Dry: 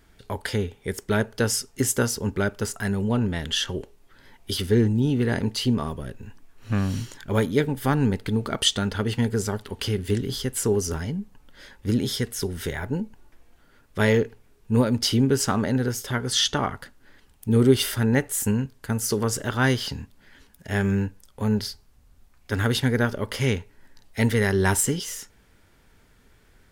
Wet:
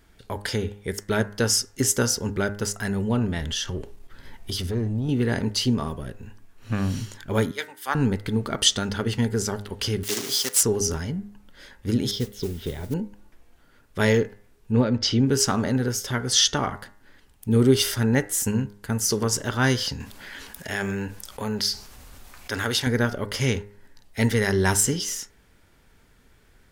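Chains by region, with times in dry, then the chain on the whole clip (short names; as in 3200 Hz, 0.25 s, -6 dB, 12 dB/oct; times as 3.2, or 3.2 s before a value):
3.41–5.09 compressor 2:1, threshold -37 dBFS + low shelf 140 Hz +8.5 dB + sample leveller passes 1
7.51–7.95 HPF 900 Hz + three-band expander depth 100%
10.03–10.63 block floating point 3-bit + Bessel high-pass 420 Hz + high shelf 3300 Hz +7.5 dB
12.11–12.94 EQ curve 410 Hz 0 dB, 1700 Hz -14 dB, 3400 Hz 0 dB, 9500 Hz -21 dB, 15000 Hz -8 dB + modulation noise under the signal 19 dB
14.72–15.27 Bessel low-pass 4200 Hz, order 4 + notch 1000 Hz, Q 11
20–22.87 low shelf 310 Hz -11.5 dB + fast leveller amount 50%
whole clip: de-hum 102 Hz, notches 21; dynamic EQ 5700 Hz, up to +7 dB, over -45 dBFS, Q 1.9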